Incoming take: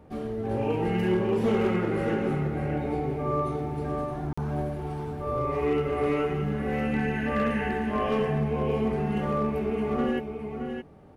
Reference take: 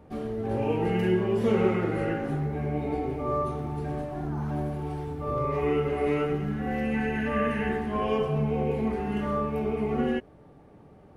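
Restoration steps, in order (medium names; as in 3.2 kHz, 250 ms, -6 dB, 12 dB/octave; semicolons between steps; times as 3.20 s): clip repair -18.5 dBFS; interpolate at 4.33 s, 45 ms; inverse comb 619 ms -7 dB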